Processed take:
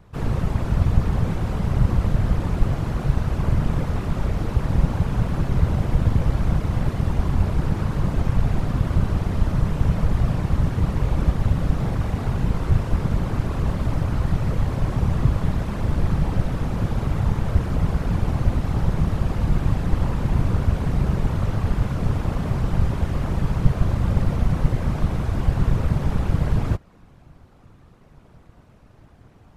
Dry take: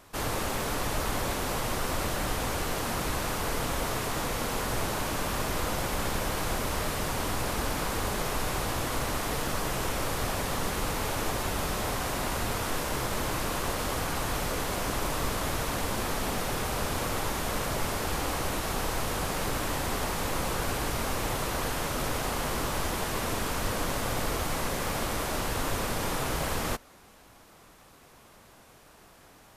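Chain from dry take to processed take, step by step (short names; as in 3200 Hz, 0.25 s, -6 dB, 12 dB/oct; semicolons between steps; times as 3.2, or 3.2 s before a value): RIAA curve playback; whisperiser; gain -2.5 dB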